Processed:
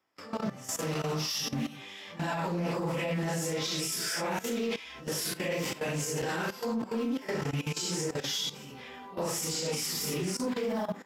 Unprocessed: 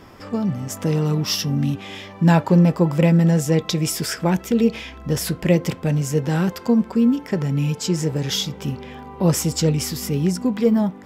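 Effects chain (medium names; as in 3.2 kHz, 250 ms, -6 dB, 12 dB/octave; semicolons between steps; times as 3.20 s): phase randomisation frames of 200 ms; gate with hold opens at -32 dBFS; high-pass 850 Hz 6 dB/octave; level held to a coarse grid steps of 17 dB; peak limiter -28 dBFS, peak gain reduction 7 dB; saturation -26.5 dBFS, distortion -26 dB; loudspeaker Doppler distortion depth 0.15 ms; trim +5.5 dB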